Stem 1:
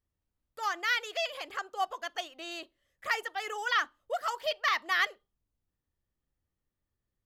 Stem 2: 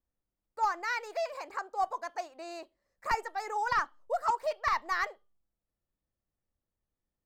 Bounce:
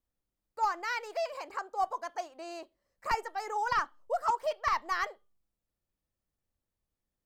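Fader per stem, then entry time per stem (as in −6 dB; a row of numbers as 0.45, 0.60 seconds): −17.5, 0.0 decibels; 0.00, 0.00 seconds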